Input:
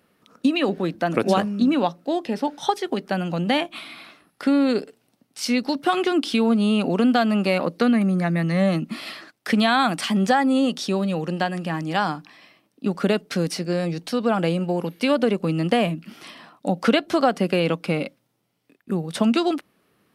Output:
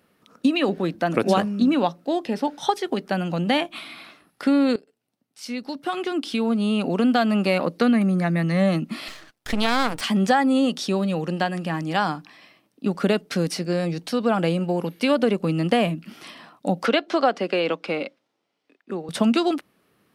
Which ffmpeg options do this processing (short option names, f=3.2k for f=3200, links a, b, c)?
-filter_complex "[0:a]asettb=1/sr,asplit=3[a][b][c];[a]atrim=end=9.084[d];[b]atrim=start=9.08:end=10.01,asetpts=PTS-STARTPTS,afade=t=in:d=0.004:c=qsin,afade=t=out:st=0.926:d=0.004:c=qsin,aeval=exprs='max(val(0),0)':c=same[e];[c]atrim=start=10.006[f];[d][e]acrossfade=d=0.004:c1=hsin:c2=qsin[g];[g][f]acrossfade=d=0.004:c1=qsin:c2=hsin,asettb=1/sr,asplit=3[h][i][j];[h]atrim=end=16.864[k];[i]atrim=start=16.86:end=19.09,asetpts=PTS-STARTPTS,afade=t=in:d=0.004:c=qsin,afade=t=out:st=2.226:d=0.004:c=qsin,acrossover=split=250 6700:gain=0.0794 1 0.0891[l][m][n];[l][m][n]amix=inputs=3:normalize=0[o];[j]atrim=start=19.086[p];[k][o]acrossfade=d=0.004:c1=hsin:c2=qsin[q];[q][p]acrossfade=d=0.004:c1=qsin:c2=hsin,asplit=2[r][s];[r]atrim=end=4.76,asetpts=PTS-STARTPTS,afade=t=out:st=4.756:d=0.004:c=hsin:silence=0.0891251[t];[s]atrim=start=4.76,asetpts=PTS-STARTPTS,afade=t=in:d=2.64:silence=0.0891251[u];[t][u]concat=n=2:v=0:a=1"